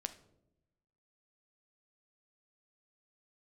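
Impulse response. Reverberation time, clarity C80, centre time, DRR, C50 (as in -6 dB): 0.90 s, 17.0 dB, 6 ms, 9.0 dB, 13.5 dB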